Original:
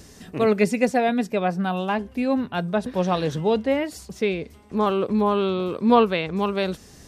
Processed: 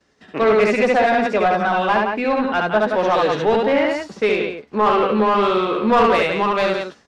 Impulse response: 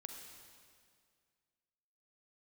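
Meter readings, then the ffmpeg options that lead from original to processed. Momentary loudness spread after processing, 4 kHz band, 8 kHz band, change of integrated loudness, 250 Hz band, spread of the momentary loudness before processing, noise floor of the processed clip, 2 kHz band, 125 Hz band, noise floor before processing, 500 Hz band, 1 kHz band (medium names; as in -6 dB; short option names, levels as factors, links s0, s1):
5 LU, +5.5 dB, no reading, +5.5 dB, +0.5 dB, 7 LU, -52 dBFS, +9.5 dB, -2.5 dB, -48 dBFS, +5.5 dB, +8.0 dB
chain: -filter_complex "[0:a]lowpass=6000,agate=range=0.0224:threshold=0.02:ratio=3:detection=peak,equalizer=f=1400:w=1.5:g=3,acrossover=split=180[s0][s1];[s0]acompressor=threshold=0.00562:ratio=6[s2];[s2][s1]amix=inputs=2:normalize=0,aecho=1:1:69.97|172:0.708|0.398,asoftclip=type=tanh:threshold=0.501,asplit=2[s3][s4];[s4]highpass=f=720:p=1,volume=7.08,asoftclip=type=tanh:threshold=0.447[s5];[s3][s5]amix=inputs=2:normalize=0,lowpass=f=2100:p=1,volume=0.501,asplit=2[s6][s7];[s7]adelay=14,volume=0.282[s8];[s6][s8]amix=inputs=2:normalize=0"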